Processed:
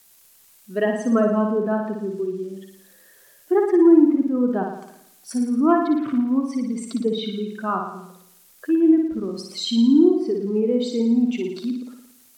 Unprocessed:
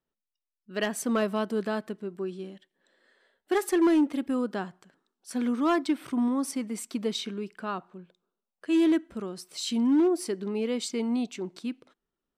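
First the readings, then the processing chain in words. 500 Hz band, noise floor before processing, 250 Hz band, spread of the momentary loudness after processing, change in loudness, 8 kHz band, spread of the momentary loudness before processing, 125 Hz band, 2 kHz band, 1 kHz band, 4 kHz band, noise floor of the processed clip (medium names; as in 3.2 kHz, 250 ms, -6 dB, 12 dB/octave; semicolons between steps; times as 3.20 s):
+8.5 dB, under -85 dBFS, +8.5 dB, 15 LU, +8.0 dB, -2.5 dB, 14 LU, no reading, +1.5 dB, +6.5 dB, +4.0 dB, -54 dBFS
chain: spectral contrast enhancement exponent 1.7; peaking EQ 930 Hz +3 dB 1.4 oct; added noise violet -57 dBFS; low-pass that closes with the level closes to 2.1 kHz, closed at -25 dBFS; on a send: flutter echo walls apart 9.7 m, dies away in 0.75 s; on the sum: crackle 600 per s -55 dBFS; trim +6 dB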